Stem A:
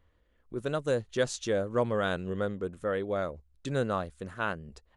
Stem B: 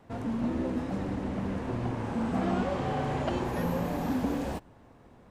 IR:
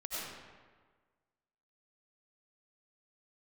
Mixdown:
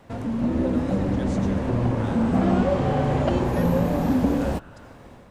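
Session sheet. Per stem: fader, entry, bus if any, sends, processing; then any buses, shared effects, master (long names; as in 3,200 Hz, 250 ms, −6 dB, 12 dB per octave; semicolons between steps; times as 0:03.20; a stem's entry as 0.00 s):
−13.0 dB, 0.00 s, send −8 dB, no processing
−1.0 dB, 0.00 s, no send, low-shelf EQ 360 Hz +7 dB; automatic gain control gain up to 5 dB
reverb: on, RT60 1.5 s, pre-delay 55 ms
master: parametric band 560 Hz +5 dB 0.21 octaves; one half of a high-frequency compander encoder only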